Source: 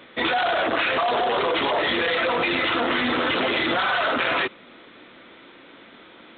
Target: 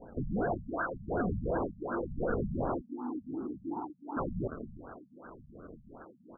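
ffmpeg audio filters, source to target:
-filter_complex "[0:a]highpass=130,lowpass=3500,aecho=1:1:320|640|960:0.126|0.0478|0.0182,acrusher=samples=28:mix=1:aa=0.000001:lfo=1:lforange=44.8:lforate=0.93,asettb=1/sr,asplit=3[s0][s1][s2];[s0]atrim=end=2.814[s3];[s1]atrim=start=2.81:end=4.17,asetpts=PTS-STARTPTS,afade=t=in:d=0.004:c=qsin,afade=t=out:st=1.356:d=0.004:c=qsin,asplit=3[s4][s5][s6];[s4]bandpass=f=300:t=q:w=8,volume=1[s7];[s5]bandpass=f=870:t=q:w=8,volume=0.501[s8];[s6]bandpass=f=2240:t=q:w=8,volume=0.355[s9];[s7][s8][s9]amix=inputs=3:normalize=0[s10];[s2]atrim=start=4.166[s11];[s3][s10]acrossfade=d=0.004:c1=hsin:c2=qsin[s12];[s12][s11]acrossfade=d=0.004:c1=qsin:c2=hsin,adynamicequalizer=threshold=0.00891:dfrequency=1500:dqfactor=1.7:tfrequency=1500:tqfactor=1.7:attack=5:release=100:ratio=0.375:range=2.5:mode=boostabove:tftype=bell,asoftclip=type=hard:threshold=0.075,alimiter=level_in=1.33:limit=0.0631:level=0:latency=1:release=73,volume=0.75,crystalizer=i=4:c=0,afftfilt=real='re*lt(b*sr/1024,210*pow(1700/210,0.5+0.5*sin(2*PI*2.7*pts/sr)))':imag='im*lt(b*sr/1024,210*pow(1700/210,0.5+0.5*sin(2*PI*2.7*pts/sr)))':win_size=1024:overlap=0.75,volume=0.841"

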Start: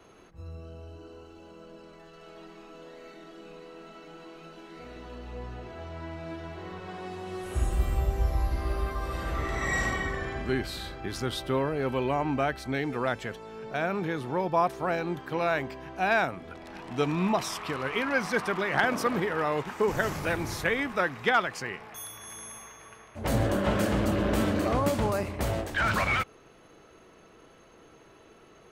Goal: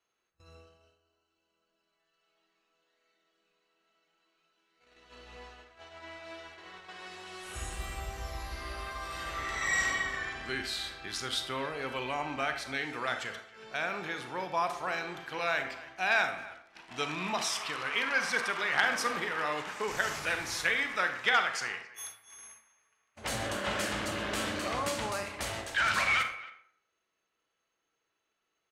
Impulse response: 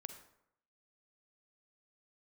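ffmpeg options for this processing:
-filter_complex "[0:a]asettb=1/sr,asplit=3[s0][s1][s2];[s0]atrim=end=5.364[s3];[s1]atrim=start=5.36:end=7.49,asetpts=PTS-STARTPTS,afade=t=in:d=0.004:c=qsin,afade=t=out:st=2.126:d=0.004:c=qsin,equalizer=f=130:w=1.1:g=-9[s4];[s2]atrim=start=7.486[s5];[s3][s4]acrossfade=d=0.004:c1=hsin:c2=qsin[s6];[s6][s5]acrossfade=d=0.004:c1=qsin:c2=hsin,agate=range=0.0708:threshold=0.00891:ratio=16:detection=peak,lowpass=9500,tiltshelf=f=890:g=-9.5,asplit=2[s7][s8];[s8]adelay=270,highpass=300,lowpass=3400,asoftclip=type=hard:threshold=0.188,volume=0.126[s9];[s7][s9]amix=inputs=2:normalize=0[s10];[1:a]atrim=start_sample=2205,asetrate=57330,aresample=44100[s11];[s10][s11]afir=irnorm=-1:irlink=0,volume=1.26"

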